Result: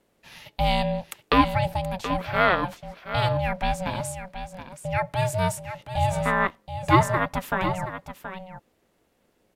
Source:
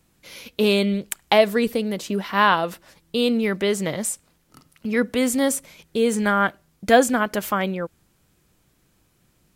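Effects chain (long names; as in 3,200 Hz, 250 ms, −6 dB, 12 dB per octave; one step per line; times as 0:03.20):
bass and treble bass −2 dB, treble −7 dB
ring modulation 370 Hz
single-tap delay 726 ms −10.5 dB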